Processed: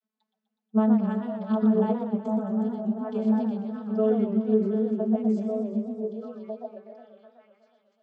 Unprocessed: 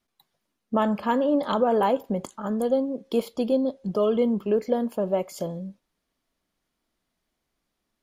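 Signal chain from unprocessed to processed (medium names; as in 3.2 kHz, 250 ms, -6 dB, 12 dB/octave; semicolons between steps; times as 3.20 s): vocoder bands 32, saw 217 Hz; repeats whose band climbs or falls 749 ms, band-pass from 250 Hz, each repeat 1.4 oct, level 0 dB; modulated delay 123 ms, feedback 71%, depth 196 cents, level -9 dB; trim -1.5 dB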